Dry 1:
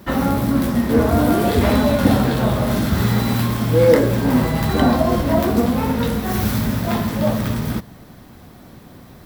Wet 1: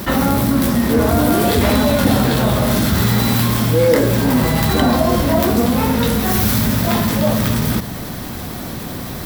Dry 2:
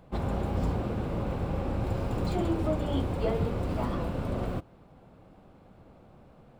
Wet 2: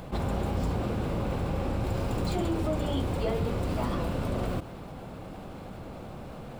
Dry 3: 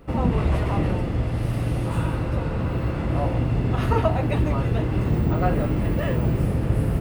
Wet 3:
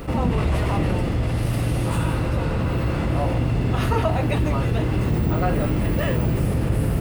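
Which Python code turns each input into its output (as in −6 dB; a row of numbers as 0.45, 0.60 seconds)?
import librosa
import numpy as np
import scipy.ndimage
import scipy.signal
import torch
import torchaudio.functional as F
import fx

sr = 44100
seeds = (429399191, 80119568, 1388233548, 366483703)

y = fx.high_shelf(x, sr, hz=2900.0, db=7.0)
y = fx.env_flatten(y, sr, amount_pct=50)
y = F.gain(torch.from_numpy(y), -2.0).numpy()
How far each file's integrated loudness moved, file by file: +2.5, +0.5, +1.0 LU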